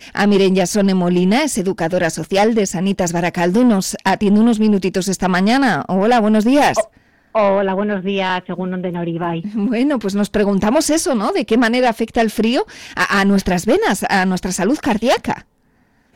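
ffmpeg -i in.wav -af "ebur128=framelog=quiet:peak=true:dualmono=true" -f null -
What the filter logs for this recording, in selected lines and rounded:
Integrated loudness:
  I:         -13.1 LUFS
  Threshold: -23.3 LUFS
Loudness range:
  LRA:         3.7 LU
  Threshold: -33.2 LUFS
  LRA low:   -15.4 LUFS
  LRA high:  -11.7 LUFS
True peak:
  Peak:       -6.1 dBFS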